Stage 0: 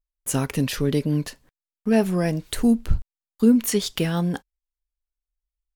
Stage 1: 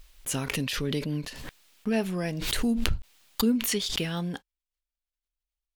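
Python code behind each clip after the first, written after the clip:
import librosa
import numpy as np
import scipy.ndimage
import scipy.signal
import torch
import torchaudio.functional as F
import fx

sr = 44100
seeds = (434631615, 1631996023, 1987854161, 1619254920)

y = fx.peak_eq(x, sr, hz=3100.0, db=7.5, octaves=1.6)
y = fx.pre_swell(y, sr, db_per_s=30.0)
y = F.gain(torch.from_numpy(y), -8.5).numpy()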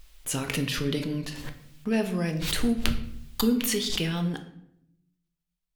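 y = fx.room_shoebox(x, sr, seeds[0], volume_m3=180.0, walls='mixed', distance_m=0.46)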